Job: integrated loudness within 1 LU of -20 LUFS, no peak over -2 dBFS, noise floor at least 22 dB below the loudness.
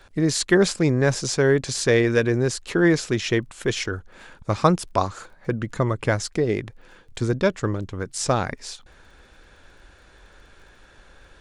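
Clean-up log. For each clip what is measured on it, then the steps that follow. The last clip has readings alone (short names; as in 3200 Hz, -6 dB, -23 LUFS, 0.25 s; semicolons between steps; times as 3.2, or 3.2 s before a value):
ticks 19/s; loudness -22.5 LUFS; peak -3.5 dBFS; loudness target -20.0 LUFS
-> de-click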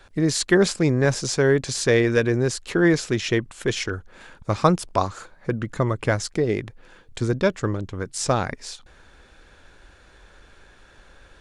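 ticks 0/s; loudness -22.5 LUFS; peak -3.5 dBFS; loudness target -20.0 LUFS
-> gain +2.5 dB; limiter -2 dBFS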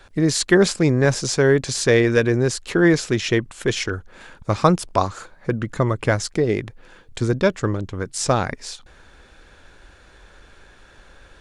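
loudness -20.0 LUFS; peak -2.0 dBFS; noise floor -50 dBFS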